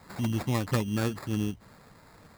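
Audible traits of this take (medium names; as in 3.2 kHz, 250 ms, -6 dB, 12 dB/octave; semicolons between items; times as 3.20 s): aliases and images of a low sample rate 3 kHz, jitter 0%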